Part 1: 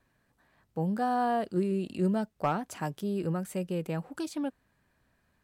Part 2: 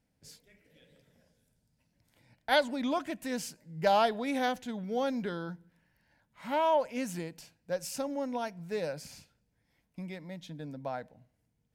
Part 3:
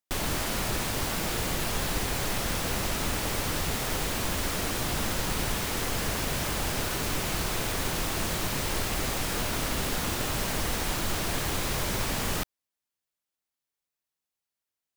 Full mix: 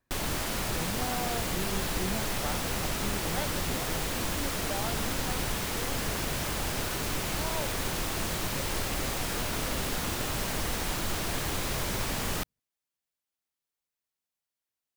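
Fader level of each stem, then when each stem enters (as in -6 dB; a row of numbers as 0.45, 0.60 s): -8.5, -12.5, -2.0 dB; 0.00, 0.85, 0.00 s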